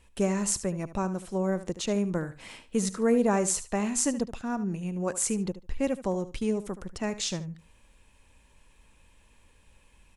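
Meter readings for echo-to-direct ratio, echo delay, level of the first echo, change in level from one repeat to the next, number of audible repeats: −14.0 dB, 74 ms, −14.0 dB, −15.0 dB, 2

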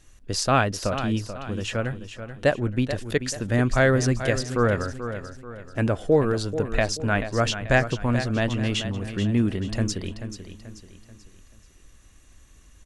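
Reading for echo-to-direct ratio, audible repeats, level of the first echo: −9.5 dB, 4, −10.5 dB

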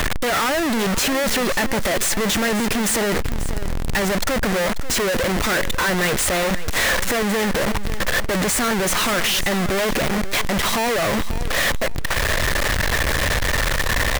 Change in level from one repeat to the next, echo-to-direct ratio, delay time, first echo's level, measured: −13.5 dB, −14.0 dB, 539 ms, −14.0 dB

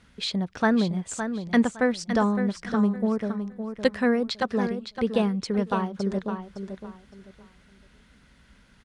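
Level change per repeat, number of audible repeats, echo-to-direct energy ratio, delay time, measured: −12.5 dB, 3, −8.0 dB, 562 ms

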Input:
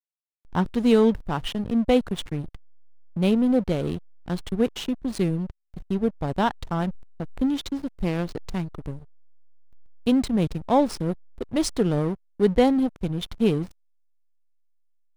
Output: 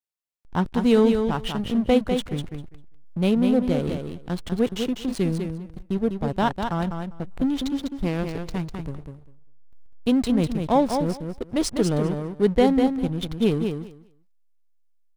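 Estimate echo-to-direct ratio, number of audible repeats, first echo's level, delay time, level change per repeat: −6.0 dB, 2, −6.0 dB, 199 ms, −16.5 dB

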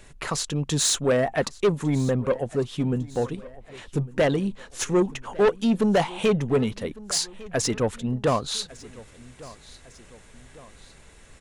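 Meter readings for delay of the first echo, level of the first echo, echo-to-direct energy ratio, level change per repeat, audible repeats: 1,153 ms, −20.5 dB, −19.5 dB, −6.0 dB, 2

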